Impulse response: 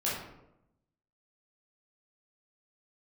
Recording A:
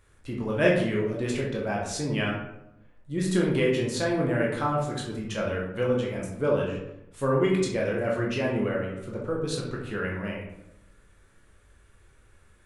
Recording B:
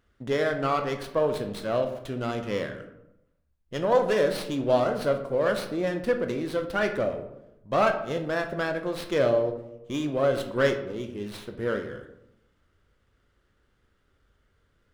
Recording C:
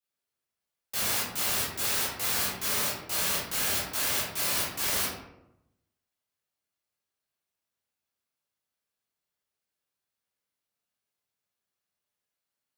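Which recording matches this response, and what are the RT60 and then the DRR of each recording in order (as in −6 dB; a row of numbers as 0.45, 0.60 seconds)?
C; 0.85, 0.85, 0.85 seconds; −3.0, 5.5, −8.0 decibels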